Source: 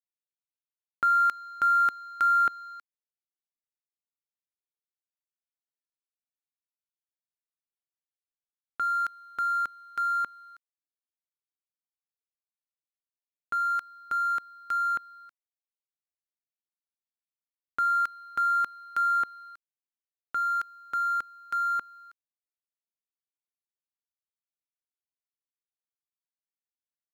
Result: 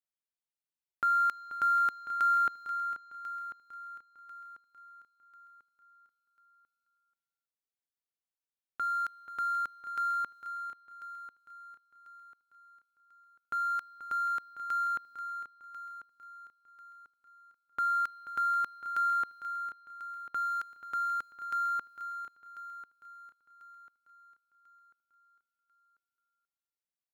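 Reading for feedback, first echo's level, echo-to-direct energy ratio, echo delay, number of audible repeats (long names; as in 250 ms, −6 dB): repeats not evenly spaced, −13.0 dB, −10.0 dB, 484 ms, 5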